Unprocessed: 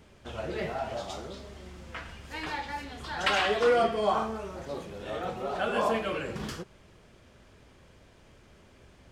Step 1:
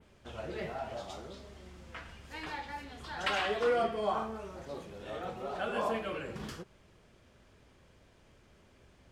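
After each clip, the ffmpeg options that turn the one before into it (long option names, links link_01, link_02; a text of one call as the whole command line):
ffmpeg -i in.wav -af "adynamicequalizer=threshold=0.00355:dfrequency=5900:dqfactor=0.86:tfrequency=5900:tqfactor=0.86:attack=5:release=100:ratio=0.375:range=2:mode=cutabove:tftype=bell,volume=-5.5dB" out.wav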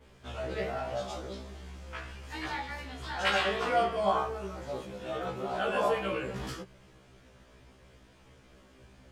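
ffmpeg -i in.wav -af "afftfilt=real='re*1.73*eq(mod(b,3),0)':imag='im*1.73*eq(mod(b,3),0)':win_size=2048:overlap=0.75,volume=7dB" out.wav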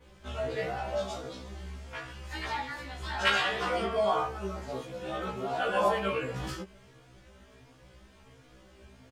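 ffmpeg -i in.wav -filter_complex "[0:a]asplit=2[link_01][link_02];[link_02]adelay=3.6,afreqshift=1.4[link_03];[link_01][link_03]amix=inputs=2:normalize=1,volume=4.5dB" out.wav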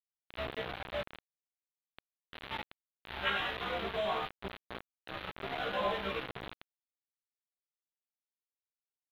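ffmpeg -i in.wav -af "aresample=8000,acrusher=bits=4:mix=0:aa=0.000001,aresample=44100,aeval=exprs='sgn(val(0))*max(abs(val(0))-0.00251,0)':channel_layout=same,volume=-7dB" out.wav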